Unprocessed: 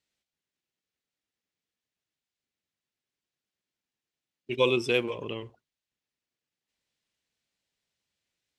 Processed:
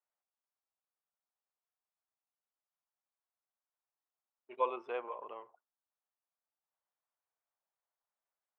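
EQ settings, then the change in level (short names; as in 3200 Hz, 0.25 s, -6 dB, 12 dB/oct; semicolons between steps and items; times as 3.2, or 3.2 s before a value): Butterworth band-pass 920 Hz, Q 1.4; 0.0 dB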